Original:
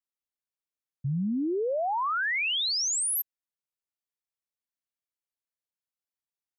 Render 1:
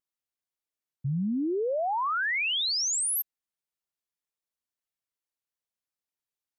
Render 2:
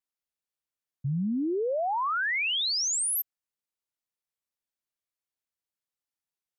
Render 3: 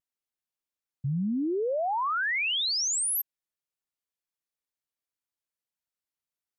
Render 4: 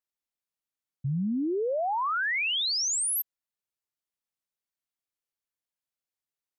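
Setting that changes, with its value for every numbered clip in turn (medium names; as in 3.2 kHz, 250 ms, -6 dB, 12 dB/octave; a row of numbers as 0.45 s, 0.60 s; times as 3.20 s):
vibrato, rate: 0.93 Hz, 5.7 Hz, 0.44 Hz, 3.4 Hz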